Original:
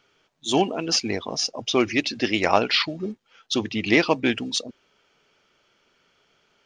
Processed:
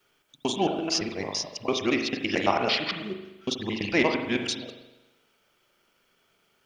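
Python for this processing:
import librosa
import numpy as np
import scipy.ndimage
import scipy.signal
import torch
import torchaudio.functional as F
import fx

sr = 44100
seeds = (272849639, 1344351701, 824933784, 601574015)

y = fx.local_reverse(x, sr, ms=112.0)
y = fx.quant_dither(y, sr, seeds[0], bits=12, dither='triangular')
y = fx.rev_spring(y, sr, rt60_s=1.0, pass_ms=(40,), chirp_ms=70, drr_db=4.5)
y = F.gain(torch.from_numpy(y), -5.0).numpy()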